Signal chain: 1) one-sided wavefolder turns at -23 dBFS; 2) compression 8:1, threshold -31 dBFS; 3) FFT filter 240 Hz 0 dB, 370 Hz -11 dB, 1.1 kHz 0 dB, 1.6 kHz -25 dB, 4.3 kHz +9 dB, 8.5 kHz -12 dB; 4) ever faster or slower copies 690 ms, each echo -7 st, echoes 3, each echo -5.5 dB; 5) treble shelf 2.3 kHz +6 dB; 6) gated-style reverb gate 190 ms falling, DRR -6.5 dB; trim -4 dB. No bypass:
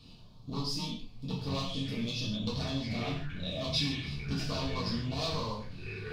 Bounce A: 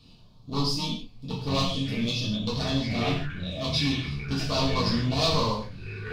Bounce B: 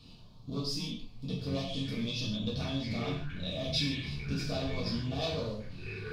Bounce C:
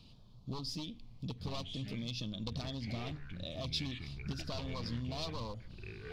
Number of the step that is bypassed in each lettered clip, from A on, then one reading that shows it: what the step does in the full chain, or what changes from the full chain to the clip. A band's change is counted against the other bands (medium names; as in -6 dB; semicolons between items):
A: 2, mean gain reduction 5.0 dB; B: 1, distortion -8 dB; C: 6, 125 Hz band +1.5 dB